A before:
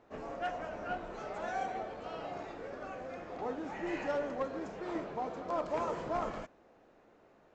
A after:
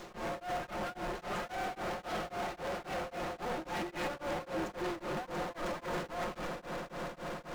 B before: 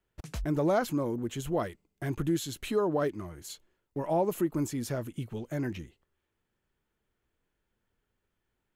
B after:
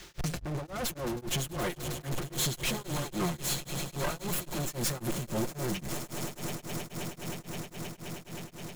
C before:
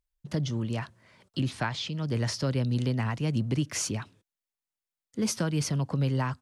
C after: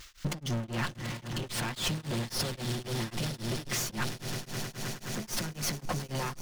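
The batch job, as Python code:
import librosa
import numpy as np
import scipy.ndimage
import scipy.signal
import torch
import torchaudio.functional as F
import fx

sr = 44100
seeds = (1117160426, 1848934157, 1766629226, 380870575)

y = fx.lower_of_two(x, sr, delay_ms=5.6)
y = fx.over_compress(y, sr, threshold_db=-40.0, ratio=-1.0)
y = fx.dmg_noise_band(y, sr, seeds[0], low_hz=1200.0, high_hz=6800.0, level_db=-77.0)
y = fx.echo_swell(y, sr, ms=105, loudest=8, wet_db=-17)
y = fx.power_curve(y, sr, exponent=0.5)
y = y * np.abs(np.cos(np.pi * 3.7 * np.arange(len(y)) / sr))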